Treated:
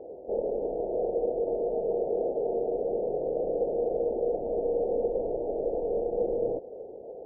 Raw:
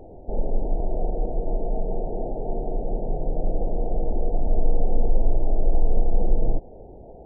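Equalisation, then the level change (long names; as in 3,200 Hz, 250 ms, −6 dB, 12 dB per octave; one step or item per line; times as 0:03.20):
resonant band-pass 480 Hz, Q 3.8
+8.0 dB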